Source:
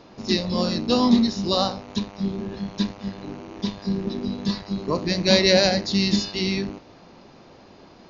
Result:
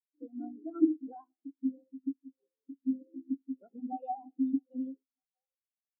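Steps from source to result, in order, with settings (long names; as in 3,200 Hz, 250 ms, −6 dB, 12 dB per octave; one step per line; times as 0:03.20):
hum removal 124 Hz, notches 37
downward compressor 12 to 1, threshold −20 dBFS, peak gain reduction 10 dB
elliptic low-pass filter 2,700 Hz
on a send at −14 dB: convolution reverb RT60 2.3 s, pre-delay 98 ms
on the sum: wrong playback speed 33 rpm record played at 45 rpm
echo through a band-pass that steps 633 ms, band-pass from 610 Hz, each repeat 0.7 octaves, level −11.5 dB
every bin expanded away from the loudest bin 4 to 1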